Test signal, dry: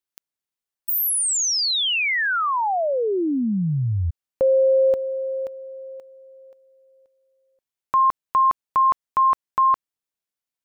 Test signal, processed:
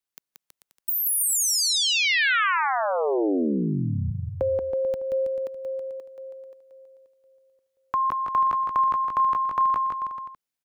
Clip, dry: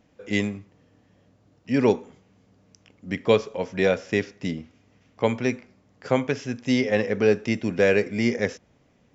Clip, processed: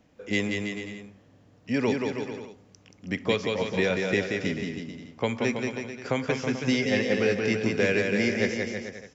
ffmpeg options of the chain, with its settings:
-filter_complex "[0:a]acrossover=split=360|1500[a][b][c];[a]acompressor=threshold=-28dB:ratio=4[d];[b]acompressor=threshold=-29dB:ratio=4[e];[c]acompressor=threshold=-24dB:ratio=4[f];[d][e][f]amix=inputs=3:normalize=0,aecho=1:1:180|324|439.2|531.4|605.1:0.631|0.398|0.251|0.158|0.1"

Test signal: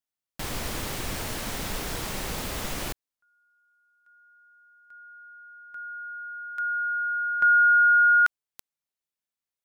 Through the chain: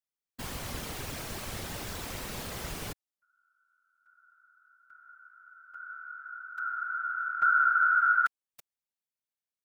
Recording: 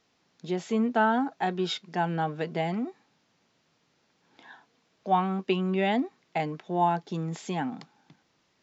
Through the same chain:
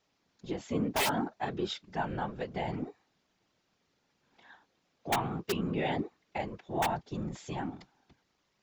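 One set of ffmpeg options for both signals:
-af "aeval=exprs='(mod(5.31*val(0)+1,2)-1)/5.31':c=same,afftfilt=real='hypot(re,im)*cos(2*PI*random(0))':imag='hypot(re,im)*sin(2*PI*random(1))':win_size=512:overlap=0.75"

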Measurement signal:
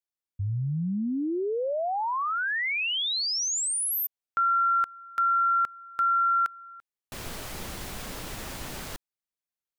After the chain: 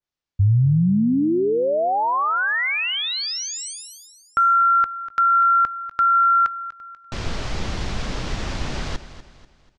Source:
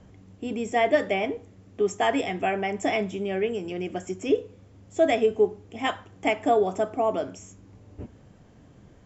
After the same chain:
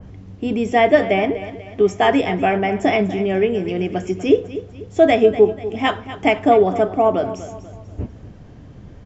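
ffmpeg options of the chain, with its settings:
-af "lowpass=f=6.1k:w=0.5412,lowpass=f=6.1k:w=1.3066,lowshelf=f=150:g=8.5,aecho=1:1:244|488|732|976:0.2|0.0798|0.0319|0.0128,adynamicequalizer=threshold=0.0112:dfrequency=2500:dqfactor=0.7:tfrequency=2500:tqfactor=0.7:attack=5:release=100:ratio=0.375:range=3:mode=cutabove:tftype=highshelf,volume=7.5dB"

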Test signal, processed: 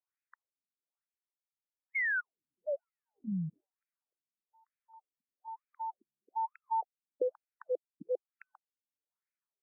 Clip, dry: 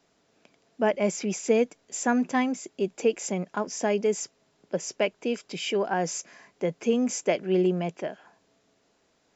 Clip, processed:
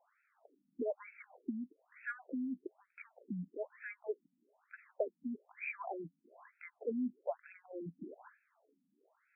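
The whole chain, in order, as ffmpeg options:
-af "lowshelf=f=200:g=-8,acompressor=threshold=-34dB:ratio=3,afftfilt=real='re*between(b*sr/1024,200*pow(1900/200,0.5+0.5*sin(2*PI*1.1*pts/sr))/1.41,200*pow(1900/200,0.5+0.5*sin(2*PI*1.1*pts/sr))*1.41)':imag='im*between(b*sr/1024,200*pow(1900/200,0.5+0.5*sin(2*PI*1.1*pts/sr))/1.41,200*pow(1900/200,0.5+0.5*sin(2*PI*1.1*pts/sr))*1.41)':win_size=1024:overlap=0.75,volume=1dB"

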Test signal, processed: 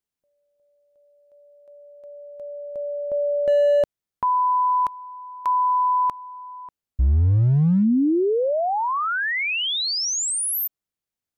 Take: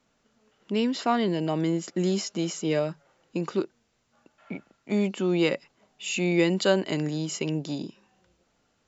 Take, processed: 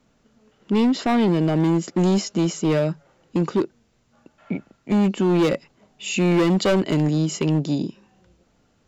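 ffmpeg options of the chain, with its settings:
-af "lowshelf=f=410:g=9,asoftclip=type=hard:threshold=-17.5dB,volume=3dB"

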